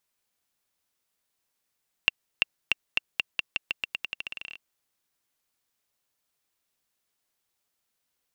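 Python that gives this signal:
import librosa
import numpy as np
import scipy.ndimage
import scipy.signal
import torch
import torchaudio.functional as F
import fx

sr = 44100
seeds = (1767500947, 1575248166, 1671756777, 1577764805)

y = fx.bouncing_ball(sr, first_gap_s=0.34, ratio=0.87, hz=2740.0, decay_ms=18.0, level_db=-4.5)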